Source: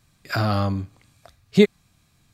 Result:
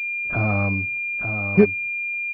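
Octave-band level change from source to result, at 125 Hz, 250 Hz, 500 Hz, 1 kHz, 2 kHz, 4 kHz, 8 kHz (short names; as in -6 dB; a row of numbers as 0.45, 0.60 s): +0.5 dB, +0.5 dB, 0.0 dB, -2.5 dB, +12.0 dB, under -20 dB, under -15 dB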